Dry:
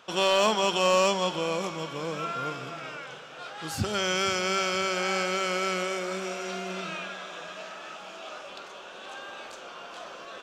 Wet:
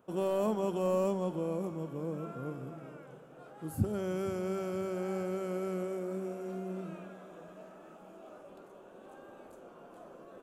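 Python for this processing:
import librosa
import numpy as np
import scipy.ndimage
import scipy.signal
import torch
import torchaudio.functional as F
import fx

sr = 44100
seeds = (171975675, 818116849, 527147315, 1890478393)

y = fx.curve_eq(x, sr, hz=(310.0, 3600.0, 5500.0, 11000.0), db=(0, -28, -27, -4))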